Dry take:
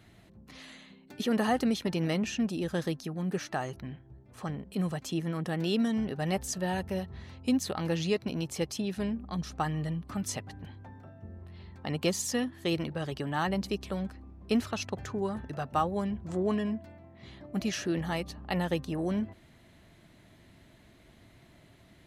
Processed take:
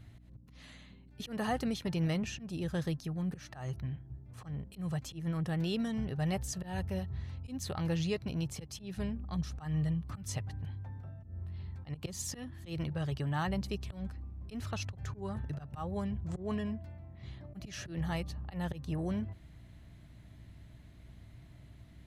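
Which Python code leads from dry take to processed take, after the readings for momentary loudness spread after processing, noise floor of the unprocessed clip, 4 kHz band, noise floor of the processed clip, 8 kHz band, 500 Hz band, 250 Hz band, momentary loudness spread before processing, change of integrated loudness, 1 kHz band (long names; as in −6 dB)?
21 LU, −58 dBFS, −6.5 dB, −55 dBFS, −6.0 dB, −8.5 dB, −6.0 dB, 18 LU, −5.0 dB, −8.0 dB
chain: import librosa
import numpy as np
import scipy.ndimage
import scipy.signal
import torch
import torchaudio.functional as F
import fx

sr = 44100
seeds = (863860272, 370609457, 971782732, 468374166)

y = fx.auto_swell(x, sr, attack_ms=160.0)
y = fx.low_shelf_res(y, sr, hz=170.0, db=9.5, q=1.5)
y = fx.add_hum(y, sr, base_hz=60, snr_db=20)
y = y * librosa.db_to_amplitude(-5.0)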